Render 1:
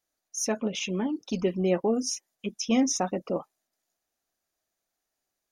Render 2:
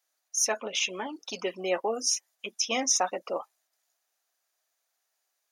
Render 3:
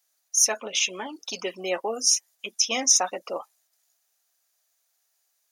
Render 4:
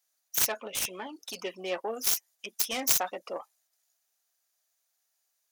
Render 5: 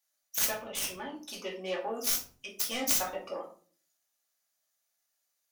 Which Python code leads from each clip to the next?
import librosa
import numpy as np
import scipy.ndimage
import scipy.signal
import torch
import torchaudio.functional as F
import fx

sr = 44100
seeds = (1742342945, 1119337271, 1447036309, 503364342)

y1 = scipy.signal.sosfilt(scipy.signal.butter(2, 720.0, 'highpass', fs=sr, output='sos'), x)
y1 = F.gain(torch.from_numpy(y1), 5.0).numpy()
y2 = fx.high_shelf(y1, sr, hz=3800.0, db=9.0)
y3 = fx.self_delay(y2, sr, depth_ms=0.25)
y3 = F.gain(torch.from_numpy(y3), -5.0).numpy()
y4 = fx.room_shoebox(y3, sr, seeds[0], volume_m3=310.0, walls='furnished', distance_m=2.4)
y4 = F.gain(torch.from_numpy(y4), -5.5).numpy()